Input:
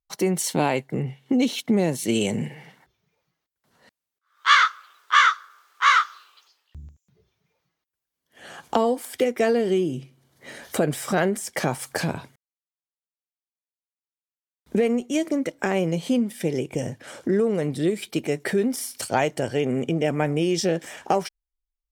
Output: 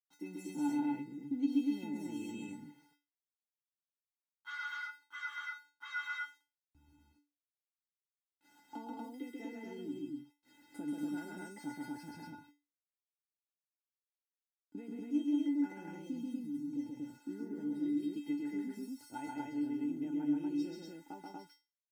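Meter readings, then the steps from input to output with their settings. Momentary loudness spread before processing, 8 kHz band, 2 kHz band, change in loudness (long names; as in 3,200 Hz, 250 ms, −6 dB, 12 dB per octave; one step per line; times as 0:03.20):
12 LU, −26.5 dB, −19.0 dB, −16.0 dB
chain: gain on a spectral selection 0:16.34–0:16.72, 310–5,500 Hz −17 dB
spectral tilt −2.5 dB per octave
centre clipping without the shift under −40.5 dBFS
tuned comb filter 290 Hz, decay 0.29 s, harmonics odd, mix 100%
loudspeakers that aren't time-aligned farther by 46 metres −2 dB, 62 metres −11 dB, 82 metres −1 dB
level −5.5 dB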